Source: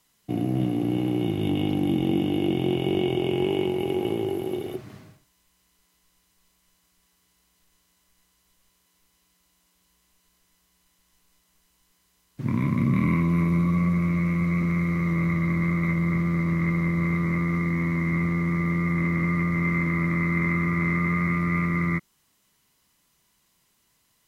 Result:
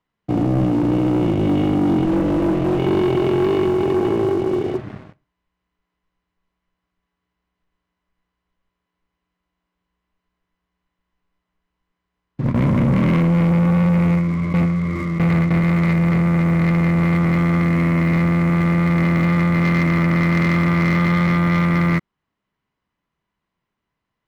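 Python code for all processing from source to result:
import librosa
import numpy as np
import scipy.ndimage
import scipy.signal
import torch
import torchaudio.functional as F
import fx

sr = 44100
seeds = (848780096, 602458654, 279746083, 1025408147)

y = fx.chain(x, sr, fx.lower_of_two(delay_ms=6.1),
    fx.air_absorb(metres=300.0), at=(2.05, 2.79))
y = fx.chain(y, sr, fx.gate_hold(open_db=-16.0, close_db=-20.0, hold_ms=71.0, range_db=-21, attack_ms=1.4, release_ms=100.0),
    fx.echo_single(ms=873, db=-21.5),
    fx.env_flatten(amount_pct=50), at=(12.5, 15.64))
y = scipy.signal.sosfilt(scipy.signal.butter(2, 1900.0, 'lowpass', fs=sr, output='sos'), y)
y = fx.leveller(y, sr, passes=3)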